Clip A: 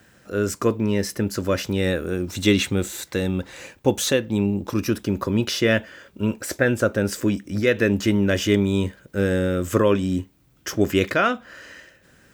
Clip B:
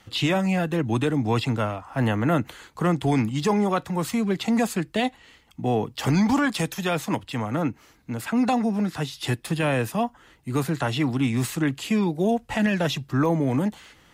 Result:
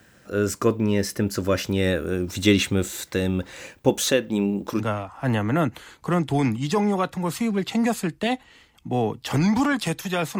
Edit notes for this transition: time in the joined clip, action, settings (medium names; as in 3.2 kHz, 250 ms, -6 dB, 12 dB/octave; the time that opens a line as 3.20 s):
clip A
3.89–4.83 s: peaking EQ 98 Hz -14.5 dB 0.58 oct
4.80 s: go over to clip B from 1.53 s, crossfade 0.06 s